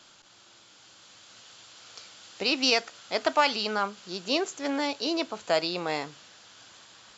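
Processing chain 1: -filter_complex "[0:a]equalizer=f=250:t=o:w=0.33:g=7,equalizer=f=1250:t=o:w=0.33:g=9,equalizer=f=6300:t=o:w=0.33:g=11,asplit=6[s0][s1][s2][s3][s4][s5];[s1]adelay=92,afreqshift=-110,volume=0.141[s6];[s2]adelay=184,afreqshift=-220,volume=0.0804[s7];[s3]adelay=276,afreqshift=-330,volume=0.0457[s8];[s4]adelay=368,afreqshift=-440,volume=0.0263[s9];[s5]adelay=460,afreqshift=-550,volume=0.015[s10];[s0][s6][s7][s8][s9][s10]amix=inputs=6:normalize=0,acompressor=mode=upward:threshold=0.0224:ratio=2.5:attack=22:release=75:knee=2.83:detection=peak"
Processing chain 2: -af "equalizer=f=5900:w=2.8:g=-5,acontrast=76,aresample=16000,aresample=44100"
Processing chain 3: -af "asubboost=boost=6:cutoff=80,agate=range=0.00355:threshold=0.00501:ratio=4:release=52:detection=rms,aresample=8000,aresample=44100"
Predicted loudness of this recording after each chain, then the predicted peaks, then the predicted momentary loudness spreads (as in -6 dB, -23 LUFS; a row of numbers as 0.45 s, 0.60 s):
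-27.0 LUFS, -21.5 LUFS, -29.5 LUFS; -5.5 dBFS, -5.0 dBFS, -10.5 dBFS; 16 LU, 20 LU, 8 LU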